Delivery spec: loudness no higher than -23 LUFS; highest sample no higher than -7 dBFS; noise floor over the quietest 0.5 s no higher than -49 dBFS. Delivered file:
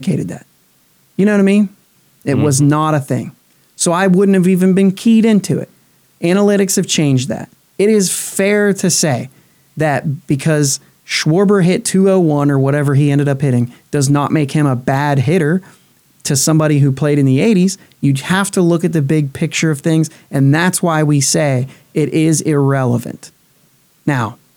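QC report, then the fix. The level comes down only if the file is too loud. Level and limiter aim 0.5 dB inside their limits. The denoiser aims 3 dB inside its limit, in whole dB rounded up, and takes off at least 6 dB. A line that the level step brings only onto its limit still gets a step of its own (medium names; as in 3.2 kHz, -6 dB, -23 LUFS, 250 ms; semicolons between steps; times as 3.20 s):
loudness -13.5 LUFS: fail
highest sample -3.5 dBFS: fail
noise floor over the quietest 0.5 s -54 dBFS: pass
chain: trim -10 dB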